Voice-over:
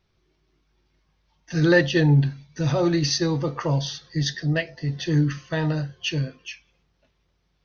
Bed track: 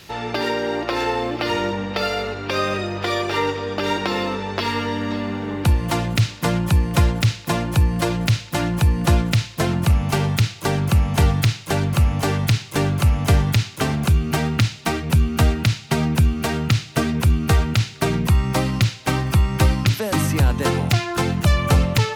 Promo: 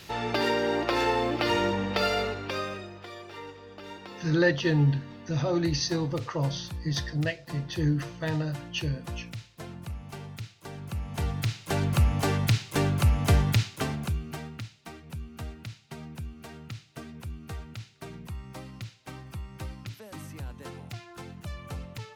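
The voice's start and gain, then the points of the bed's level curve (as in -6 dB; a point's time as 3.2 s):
2.70 s, -5.5 dB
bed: 2.24 s -3.5 dB
3.1 s -21 dB
10.68 s -21 dB
11.87 s -5.5 dB
13.62 s -5.5 dB
14.69 s -22 dB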